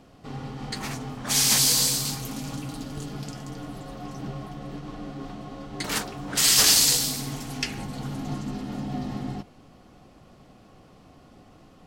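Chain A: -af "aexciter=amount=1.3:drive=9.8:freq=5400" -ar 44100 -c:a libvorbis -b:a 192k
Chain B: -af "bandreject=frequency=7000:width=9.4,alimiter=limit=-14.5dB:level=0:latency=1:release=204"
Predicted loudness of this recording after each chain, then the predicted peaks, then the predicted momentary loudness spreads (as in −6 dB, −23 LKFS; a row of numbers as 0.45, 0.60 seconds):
−16.5, −29.0 LKFS; −2.5, −14.5 dBFS; 22, 16 LU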